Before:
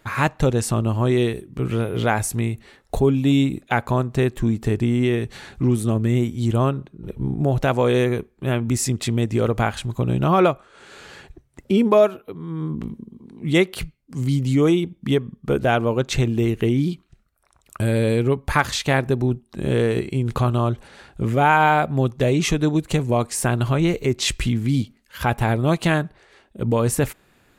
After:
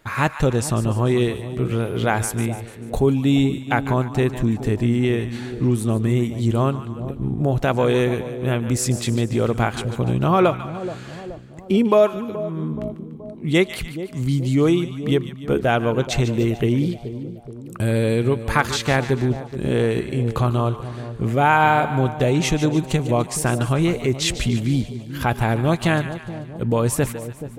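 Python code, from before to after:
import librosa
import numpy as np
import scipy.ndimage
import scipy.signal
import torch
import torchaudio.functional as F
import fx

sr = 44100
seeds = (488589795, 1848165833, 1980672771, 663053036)

y = fx.echo_split(x, sr, split_hz=810.0, low_ms=426, high_ms=147, feedback_pct=52, wet_db=-12)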